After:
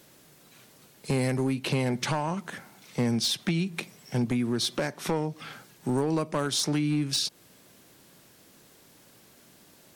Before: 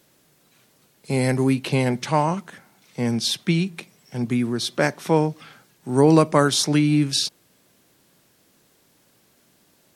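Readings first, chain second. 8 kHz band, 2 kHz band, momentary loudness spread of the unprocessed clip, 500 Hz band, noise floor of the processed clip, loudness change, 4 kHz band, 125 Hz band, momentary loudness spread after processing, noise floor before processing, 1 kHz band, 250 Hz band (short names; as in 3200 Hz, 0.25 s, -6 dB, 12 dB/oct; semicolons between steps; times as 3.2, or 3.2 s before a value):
-5.0 dB, -6.5 dB, 13 LU, -9.0 dB, -57 dBFS, -7.5 dB, -4.5 dB, -6.5 dB, 12 LU, -61 dBFS, -9.5 dB, -7.0 dB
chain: compressor 10:1, threshold -27 dBFS, peak gain reduction 17 dB; hard clip -24.5 dBFS, distortion -17 dB; gain +4 dB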